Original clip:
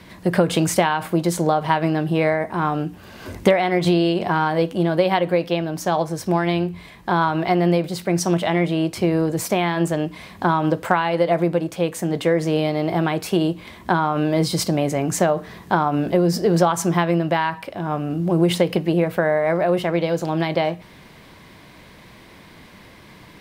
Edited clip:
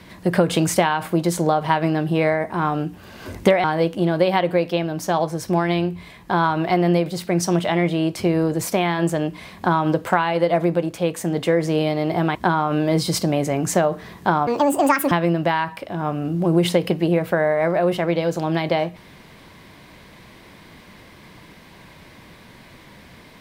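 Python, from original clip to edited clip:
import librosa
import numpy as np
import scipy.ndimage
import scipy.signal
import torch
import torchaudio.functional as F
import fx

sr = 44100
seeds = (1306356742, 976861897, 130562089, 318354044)

y = fx.edit(x, sr, fx.cut(start_s=3.64, length_s=0.78),
    fx.cut(start_s=13.13, length_s=0.67),
    fx.speed_span(start_s=15.92, length_s=1.05, speed=1.63), tone=tone)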